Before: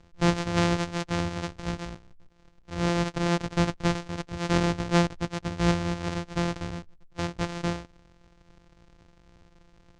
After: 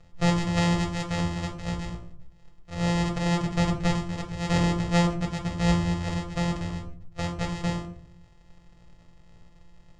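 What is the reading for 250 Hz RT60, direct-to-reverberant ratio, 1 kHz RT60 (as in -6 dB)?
0.85 s, 2.0 dB, 0.45 s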